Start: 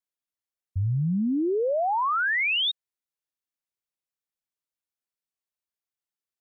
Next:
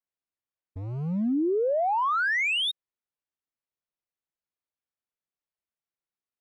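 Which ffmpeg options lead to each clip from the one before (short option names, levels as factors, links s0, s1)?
-filter_complex "[0:a]acrossover=split=190[s0][s1];[s0]asoftclip=type=hard:threshold=0.0158[s2];[s1]adynamicsmooth=sensitivity=1.5:basefreq=3200[s3];[s2][s3]amix=inputs=2:normalize=0"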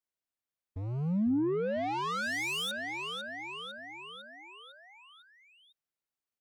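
-filter_complex "[0:a]aecho=1:1:502|1004|1506|2008|2510|3012:0.316|0.177|0.0992|0.0555|0.0311|0.0174,acrossover=split=290[s0][s1];[s1]asoftclip=type=tanh:threshold=0.0282[s2];[s0][s2]amix=inputs=2:normalize=0,volume=0.841"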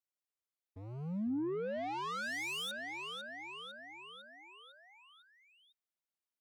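-af "highpass=f=180:p=1,volume=0.531"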